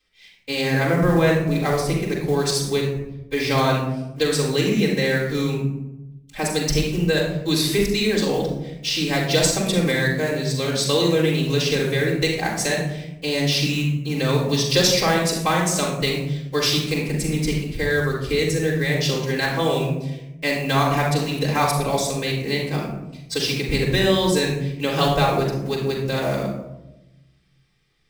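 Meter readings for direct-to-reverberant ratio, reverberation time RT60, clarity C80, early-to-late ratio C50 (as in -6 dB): -9.0 dB, 0.95 s, 6.0 dB, 3.0 dB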